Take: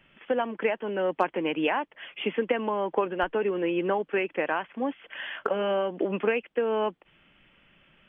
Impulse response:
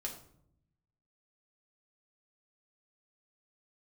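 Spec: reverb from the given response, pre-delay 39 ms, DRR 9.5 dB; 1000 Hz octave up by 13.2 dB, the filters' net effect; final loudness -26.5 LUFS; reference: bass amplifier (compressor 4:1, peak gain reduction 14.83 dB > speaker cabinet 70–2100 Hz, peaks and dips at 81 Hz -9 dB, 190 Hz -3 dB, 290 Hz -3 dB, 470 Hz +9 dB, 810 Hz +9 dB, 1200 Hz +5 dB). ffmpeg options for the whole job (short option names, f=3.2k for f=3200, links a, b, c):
-filter_complex "[0:a]equalizer=f=1k:t=o:g=8,asplit=2[a][b];[1:a]atrim=start_sample=2205,adelay=39[c];[b][c]afir=irnorm=-1:irlink=0,volume=-9dB[d];[a][d]amix=inputs=2:normalize=0,acompressor=threshold=-31dB:ratio=4,highpass=f=70:w=0.5412,highpass=f=70:w=1.3066,equalizer=f=81:t=q:w=4:g=-9,equalizer=f=190:t=q:w=4:g=-3,equalizer=f=290:t=q:w=4:g=-3,equalizer=f=470:t=q:w=4:g=9,equalizer=f=810:t=q:w=4:g=9,equalizer=f=1.2k:t=q:w=4:g=5,lowpass=f=2.1k:w=0.5412,lowpass=f=2.1k:w=1.3066,volume=3dB"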